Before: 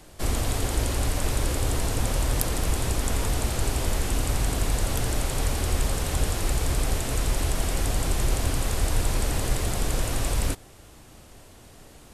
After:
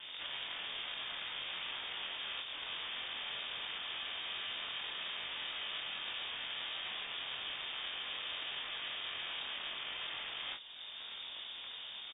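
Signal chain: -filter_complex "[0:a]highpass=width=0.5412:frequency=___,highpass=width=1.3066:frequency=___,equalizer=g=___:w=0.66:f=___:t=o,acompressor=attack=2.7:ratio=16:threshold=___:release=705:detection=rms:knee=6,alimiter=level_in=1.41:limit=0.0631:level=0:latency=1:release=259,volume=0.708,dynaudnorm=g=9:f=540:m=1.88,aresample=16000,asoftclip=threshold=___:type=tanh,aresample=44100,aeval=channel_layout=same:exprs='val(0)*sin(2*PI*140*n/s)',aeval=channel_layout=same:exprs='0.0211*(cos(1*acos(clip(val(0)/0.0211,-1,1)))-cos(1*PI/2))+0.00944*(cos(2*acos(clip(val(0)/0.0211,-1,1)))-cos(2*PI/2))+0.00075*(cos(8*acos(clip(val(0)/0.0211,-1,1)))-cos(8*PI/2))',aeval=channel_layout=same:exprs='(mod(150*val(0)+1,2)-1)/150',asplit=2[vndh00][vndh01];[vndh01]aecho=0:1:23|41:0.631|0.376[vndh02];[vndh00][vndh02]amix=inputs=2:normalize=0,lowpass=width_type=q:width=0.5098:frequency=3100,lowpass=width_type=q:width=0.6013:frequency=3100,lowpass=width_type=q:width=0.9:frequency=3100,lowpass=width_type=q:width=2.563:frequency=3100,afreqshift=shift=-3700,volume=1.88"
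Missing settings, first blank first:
49, 49, 3.5, 580, 0.0316, 0.0112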